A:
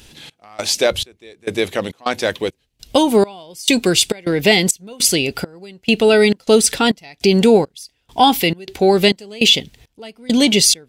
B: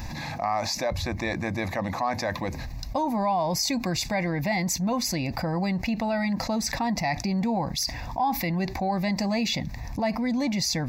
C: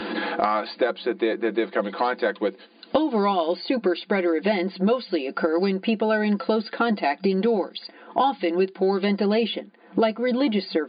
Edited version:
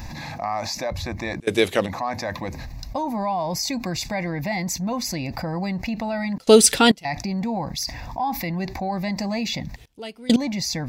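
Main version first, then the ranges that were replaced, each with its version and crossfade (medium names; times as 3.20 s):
B
1.40–1.86 s: from A
6.38–7.05 s: from A
9.76–10.36 s: from A
not used: C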